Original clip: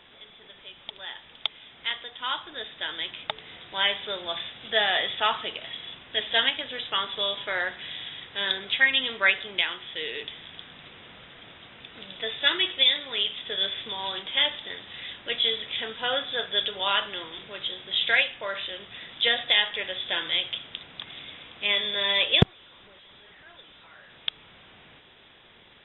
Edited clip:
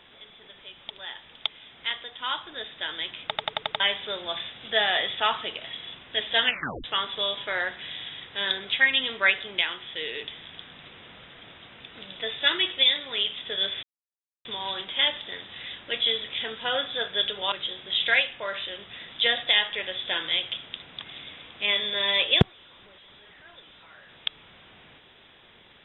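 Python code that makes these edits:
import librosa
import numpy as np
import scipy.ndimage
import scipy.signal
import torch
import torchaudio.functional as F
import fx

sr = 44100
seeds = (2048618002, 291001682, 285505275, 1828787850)

y = fx.edit(x, sr, fx.stutter_over(start_s=3.26, slice_s=0.09, count=6),
    fx.tape_stop(start_s=6.45, length_s=0.39),
    fx.insert_silence(at_s=13.83, length_s=0.62),
    fx.cut(start_s=16.9, length_s=0.63), tone=tone)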